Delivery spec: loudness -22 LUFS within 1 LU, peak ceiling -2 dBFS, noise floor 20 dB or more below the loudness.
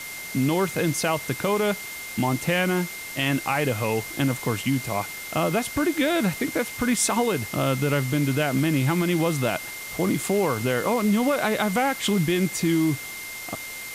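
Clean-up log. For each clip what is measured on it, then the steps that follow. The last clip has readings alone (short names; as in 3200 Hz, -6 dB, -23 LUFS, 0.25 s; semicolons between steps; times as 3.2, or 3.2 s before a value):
steady tone 2100 Hz; tone level -36 dBFS; noise floor -36 dBFS; noise floor target -45 dBFS; loudness -24.5 LUFS; peak -10.5 dBFS; loudness target -22.0 LUFS
-> notch 2100 Hz, Q 30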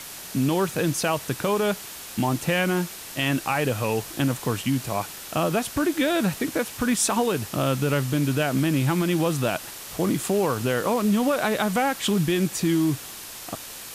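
steady tone none; noise floor -39 dBFS; noise floor target -45 dBFS
-> denoiser 6 dB, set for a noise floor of -39 dBFS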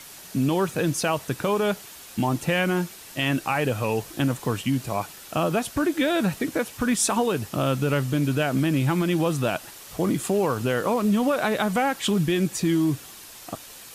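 noise floor -44 dBFS; noise floor target -45 dBFS
-> denoiser 6 dB, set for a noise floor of -44 dBFS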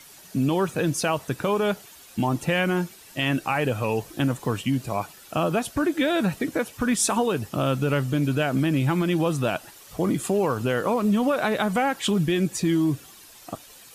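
noise floor -48 dBFS; loudness -24.5 LUFS; peak -10.5 dBFS; loudness target -22.0 LUFS
-> gain +2.5 dB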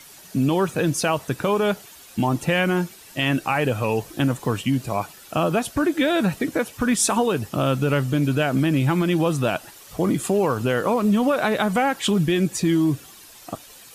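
loudness -22.0 LUFS; peak -8.0 dBFS; noise floor -46 dBFS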